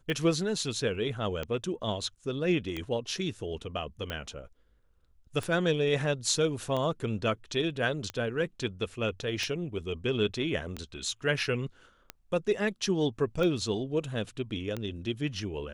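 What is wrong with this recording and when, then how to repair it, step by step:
tick 45 rpm -20 dBFS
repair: de-click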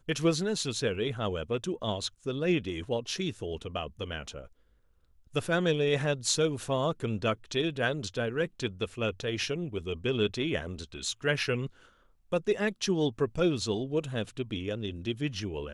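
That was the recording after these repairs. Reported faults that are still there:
nothing left

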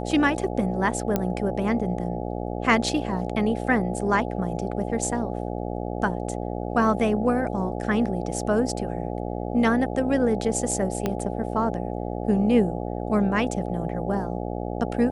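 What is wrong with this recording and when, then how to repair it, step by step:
buzz 60 Hz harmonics 14 -30 dBFS
1.16 s: pop -9 dBFS
11.06 s: pop -11 dBFS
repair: de-click; de-hum 60 Hz, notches 14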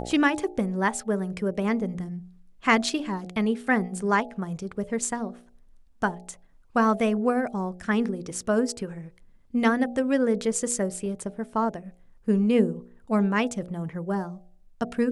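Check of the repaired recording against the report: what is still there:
11.06 s: pop

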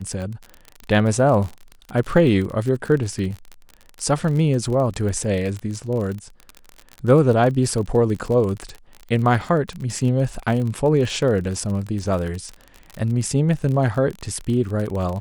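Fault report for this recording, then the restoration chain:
crackle 36 per s -26 dBFS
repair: de-click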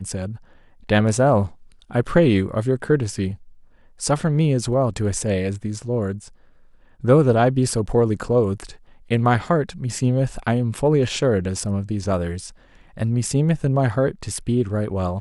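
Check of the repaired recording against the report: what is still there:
nothing left

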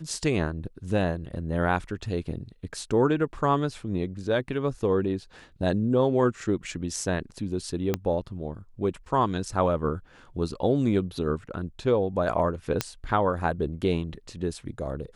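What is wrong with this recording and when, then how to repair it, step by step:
7.94 s: pop -11 dBFS
12.81 s: pop -8 dBFS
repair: de-click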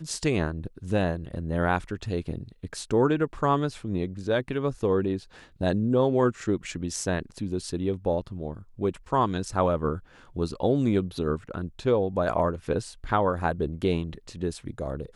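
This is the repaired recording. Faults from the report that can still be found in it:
7.94 s: pop

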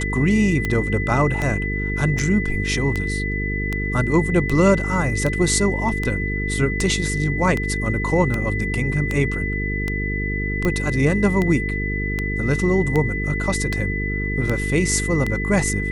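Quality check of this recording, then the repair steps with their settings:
buzz 50 Hz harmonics 9 -25 dBFS
tick 78 rpm -10 dBFS
whine 2 kHz -26 dBFS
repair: de-click; band-stop 2 kHz, Q 30; de-hum 50 Hz, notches 9

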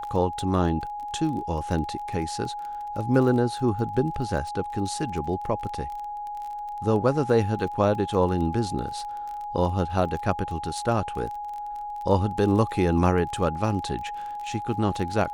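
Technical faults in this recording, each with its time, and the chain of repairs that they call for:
crackle 28 per s -33 dBFS
whine 830 Hz -31 dBFS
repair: de-click; band-stop 830 Hz, Q 30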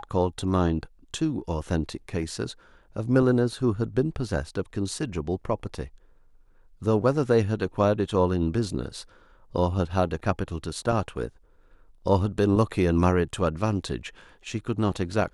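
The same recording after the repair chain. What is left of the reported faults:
nothing left

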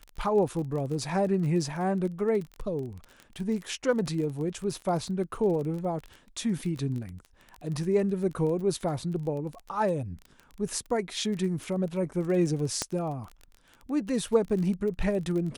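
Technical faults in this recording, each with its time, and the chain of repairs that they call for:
crackle 25 per s -34 dBFS
12.82 s: pop -13 dBFS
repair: de-click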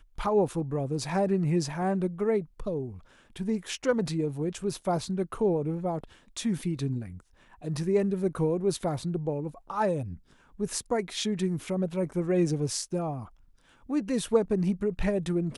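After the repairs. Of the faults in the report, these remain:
nothing left

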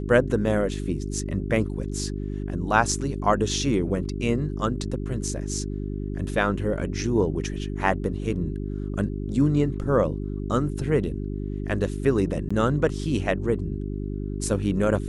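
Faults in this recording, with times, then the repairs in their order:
hum 50 Hz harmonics 8 -30 dBFS
12.49–12.51 s: dropout 15 ms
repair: de-hum 50 Hz, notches 8; interpolate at 12.49 s, 15 ms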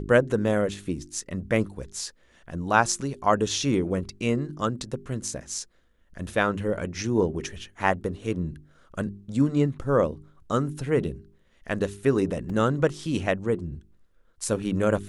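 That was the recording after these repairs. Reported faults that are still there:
nothing left

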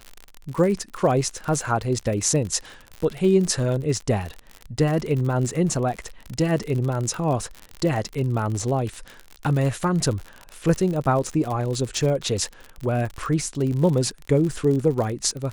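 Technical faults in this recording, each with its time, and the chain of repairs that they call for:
crackle 59 per s -27 dBFS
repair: de-click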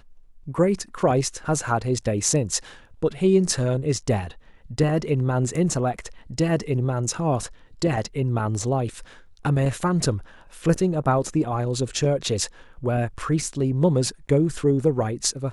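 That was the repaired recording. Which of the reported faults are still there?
nothing left

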